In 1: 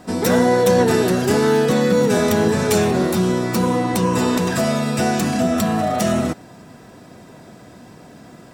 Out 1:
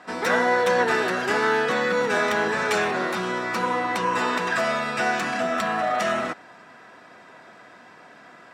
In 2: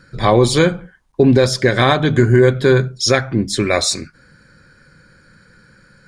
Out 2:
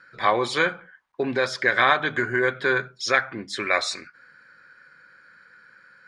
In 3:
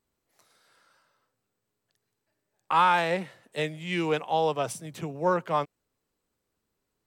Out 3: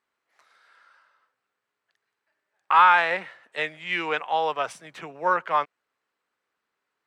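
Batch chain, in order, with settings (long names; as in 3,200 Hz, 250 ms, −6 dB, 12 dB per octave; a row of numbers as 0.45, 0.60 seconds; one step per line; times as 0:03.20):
resonant band-pass 1,600 Hz, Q 1.2
loudness normalisation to −23 LKFS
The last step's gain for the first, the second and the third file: +4.5, +0.5, +8.5 decibels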